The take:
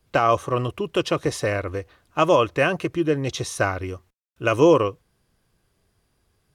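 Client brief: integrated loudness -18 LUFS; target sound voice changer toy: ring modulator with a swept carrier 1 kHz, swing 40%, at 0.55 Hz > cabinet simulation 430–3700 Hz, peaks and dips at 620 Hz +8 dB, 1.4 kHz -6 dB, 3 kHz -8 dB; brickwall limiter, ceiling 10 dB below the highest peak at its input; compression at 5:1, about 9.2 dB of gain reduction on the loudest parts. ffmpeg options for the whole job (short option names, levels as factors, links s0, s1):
-af "acompressor=threshold=0.0891:ratio=5,alimiter=limit=0.112:level=0:latency=1,aeval=exprs='val(0)*sin(2*PI*1000*n/s+1000*0.4/0.55*sin(2*PI*0.55*n/s))':c=same,highpass=430,equalizer=f=620:t=q:w=4:g=8,equalizer=f=1400:t=q:w=4:g=-6,equalizer=f=3000:t=q:w=4:g=-8,lowpass=f=3700:w=0.5412,lowpass=f=3700:w=1.3066,volume=6.31"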